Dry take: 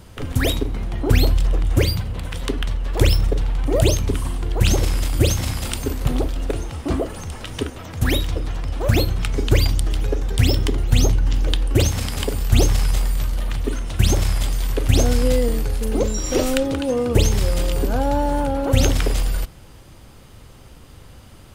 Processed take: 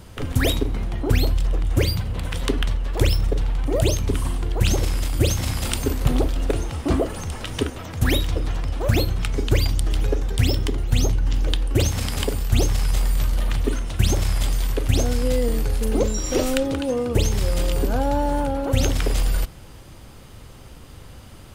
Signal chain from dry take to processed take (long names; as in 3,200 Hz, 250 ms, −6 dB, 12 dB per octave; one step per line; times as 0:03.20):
speech leveller within 3 dB 0.5 s
level −1.5 dB